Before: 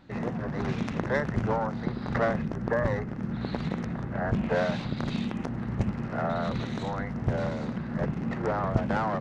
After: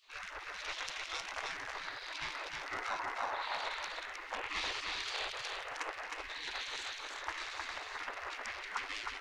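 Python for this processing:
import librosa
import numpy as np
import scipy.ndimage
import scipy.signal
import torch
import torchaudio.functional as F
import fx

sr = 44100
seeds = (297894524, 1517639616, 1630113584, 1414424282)

y = fx.spec_gate(x, sr, threshold_db=-25, keep='weak')
y = fx.peak_eq(y, sr, hz=880.0, db=13.5, octaves=1.1, at=(2.87, 3.56))
y = y + 10.0 ** (-3.5 / 20.0) * np.pad(y, (int(312 * sr / 1000.0), 0))[:len(y)]
y = y * librosa.db_to_amplitude(5.5)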